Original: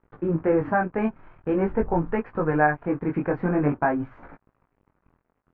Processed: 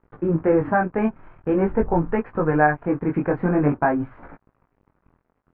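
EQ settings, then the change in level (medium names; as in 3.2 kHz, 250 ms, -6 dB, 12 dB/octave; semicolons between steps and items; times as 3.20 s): distance through air 190 m; +3.5 dB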